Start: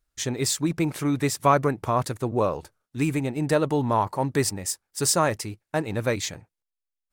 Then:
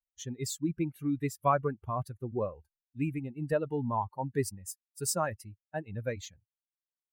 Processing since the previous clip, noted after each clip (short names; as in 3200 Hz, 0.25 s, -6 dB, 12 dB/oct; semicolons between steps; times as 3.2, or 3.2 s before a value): per-bin expansion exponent 2; bell 4100 Hz -6.5 dB 1.9 oct; notch 2200 Hz, Q 26; gain -4 dB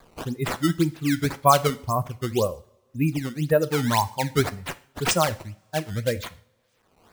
upward compressor, threshold -40 dBFS; decimation with a swept rate 15×, swing 160% 1.9 Hz; two-slope reverb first 0.46 s, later 2.2 s, from -26 dB, DRR 12.5 dB; gain +9 dB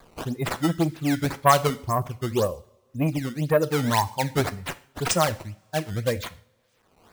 core saturation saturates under 860 Hz; gain +1 dB